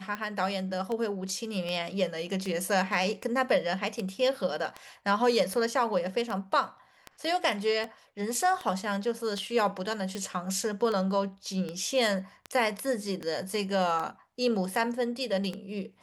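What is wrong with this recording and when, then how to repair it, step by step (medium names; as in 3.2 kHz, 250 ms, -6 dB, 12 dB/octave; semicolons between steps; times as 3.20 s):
tick 78 rpm -21 dBFS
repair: de-click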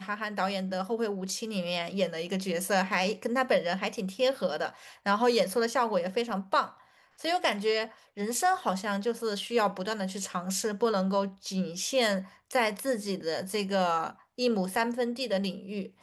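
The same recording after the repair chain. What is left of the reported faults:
nothing left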